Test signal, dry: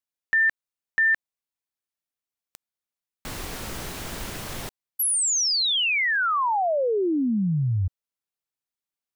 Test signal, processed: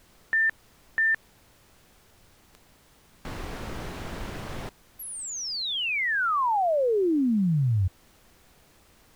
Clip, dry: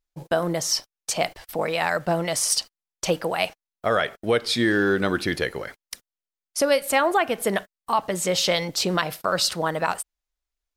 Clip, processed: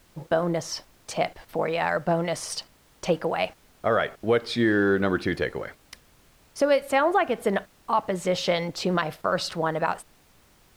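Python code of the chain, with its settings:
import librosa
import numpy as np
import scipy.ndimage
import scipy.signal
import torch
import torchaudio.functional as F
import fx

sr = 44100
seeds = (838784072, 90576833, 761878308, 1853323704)

y = fx.lowpass(x, sr, hz=1800.0, slope=6)
y = fx.dmg_noise_colour(y, sr, seeds[0], colour='pink', level_db=-58.0)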